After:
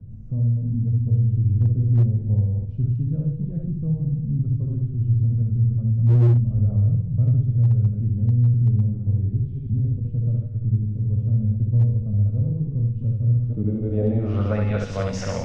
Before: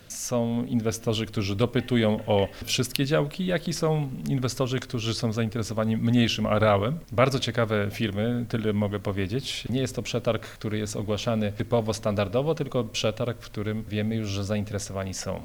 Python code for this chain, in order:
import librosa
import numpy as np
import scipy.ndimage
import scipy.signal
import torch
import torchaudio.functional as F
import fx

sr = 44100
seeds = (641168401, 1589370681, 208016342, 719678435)

p1 = fx.reverse_delay(x, sr, ms=123, wet_db=-3.5)
p2 = fx.low_shelf(p1, sr, hz=490.0, db=3.0)
p3 = fx.comb_fb(p2, sr, f0_hz=120.0, decay_s=1.1, harmonics='all', damping=0.0, mix_pct=70)
p4 = fx.filter_sweep_lowpass(p3, sr, from_hz=120.0, to_hz=5400.0, start_s=13.23, end_s=15.12, q=1.5)
p5 = p4 + fx.room_early_taps(p4, sr, ms=(19, 69), db=(-10.0, -3.0), dry=0)
p6 = np.clip(p5, -10.0 ** (-19.0 / 20.0), 10.0 ** (-19.0 / 20.0))
p7 = fx.band_squash(p6, sr, depth_pct=40)
y = p7 * librosa.db_to_amplitude(8.5)